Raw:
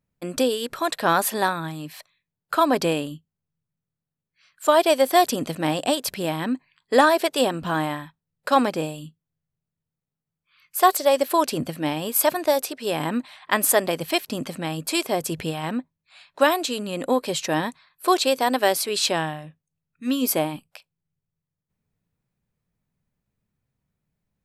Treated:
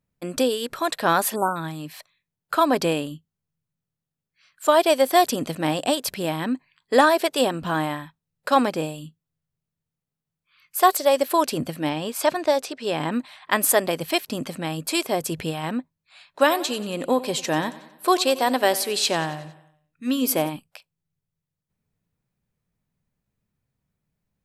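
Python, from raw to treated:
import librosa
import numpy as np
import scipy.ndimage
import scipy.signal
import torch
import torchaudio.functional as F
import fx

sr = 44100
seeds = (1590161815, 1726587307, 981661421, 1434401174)

y = fx.spec_erase(x, sr, start_s=1.35, length_s=0.21, low_hz=1500.0, high_hz=7000.0)
y = fx.lowpass(y, sr, hz=6900.0, slope=12, at=(11.89, 13.12))
y = fx.echo_feedback(y, sr, ms=91, feedback_pct=53, wet_db=-17.0, at=(16.45, 20.48), fade=0.02)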